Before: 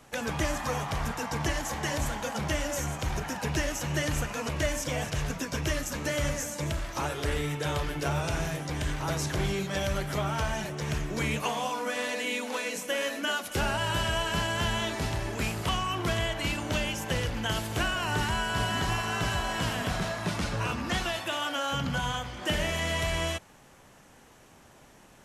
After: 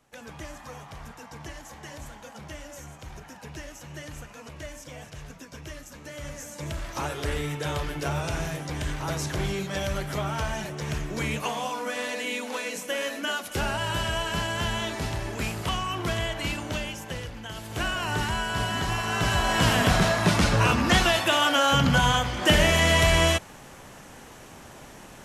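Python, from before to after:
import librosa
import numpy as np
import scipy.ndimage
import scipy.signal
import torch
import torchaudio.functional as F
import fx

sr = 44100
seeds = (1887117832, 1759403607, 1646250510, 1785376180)

y = fx.gain(x, sr, db=fx.line((6.1, -11.0), (6.89, 0.5), (16.52, 0.5), (17.52, -8.5), (17.87, 1.0), (18.91, 1.0), (19.74, 9.5)))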